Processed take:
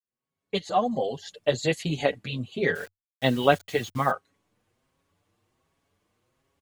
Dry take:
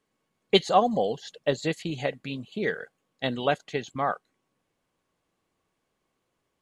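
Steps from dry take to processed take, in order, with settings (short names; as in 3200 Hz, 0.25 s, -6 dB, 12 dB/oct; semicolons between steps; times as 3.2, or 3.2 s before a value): opening faded in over 1.92 s; 1.11–2.12 high shelf 7900 Hz +5.5 dB; 2.75–4.11 requantised 8-bit, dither none; bell 92 Hz +13 dB 0.43 oct; endless flanger 6.2 ms +1.3 Hz; gain +6.5 dB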